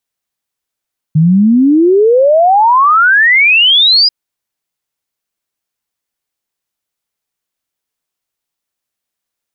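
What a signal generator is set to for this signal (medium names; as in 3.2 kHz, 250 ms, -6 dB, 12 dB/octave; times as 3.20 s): log sweep 150 Hz -> 5 kHz 2.94 s -4.5 dBFS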